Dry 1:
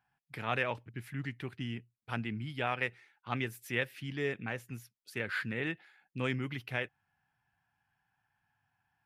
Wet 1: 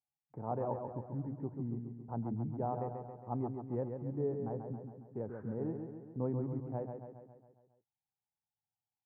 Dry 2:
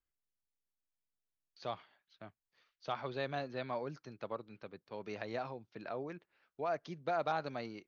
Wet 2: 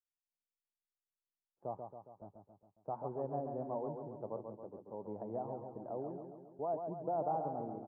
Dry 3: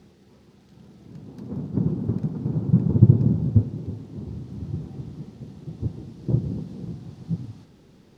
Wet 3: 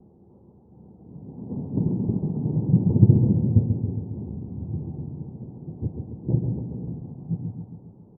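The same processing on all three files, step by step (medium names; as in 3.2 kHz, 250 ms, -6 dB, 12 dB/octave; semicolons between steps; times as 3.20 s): gate with hold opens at -50 dBFS; Chebyshev low-pass 900 Hz, order 4; feedback delay 137 ms, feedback 57%, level -6 dB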